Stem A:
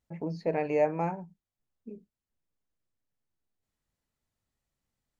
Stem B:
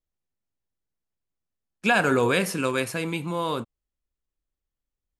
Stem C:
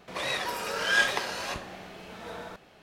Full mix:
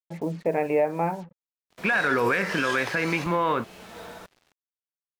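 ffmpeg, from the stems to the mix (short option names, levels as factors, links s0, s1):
-filter_complex "[0:a]lowpass=f=2900:w=0.5412,lowpass=f=2900:w=1.3066,volume=1.06[s0];[1:a]lowpass=f=1900:t=q:w=3.1,volume=1.06[s1];[2:a]highshelf=f=5100:g=3,adelay=1700,volume=0.398[s2];[s0][s1]amix=inputs=2:normalize=0,lowshelf=f=180:g=-6.5,alimiter=limit=0.224:level=0:latency=1:release=129,volume=1[s3];[s2][s3]amix=inputs=2:normalize=0,acontrast=64,acrusher=bits=7:mix=0:aa=0.5,alimiter=limit=0.2:level=0:latency=1:release=230"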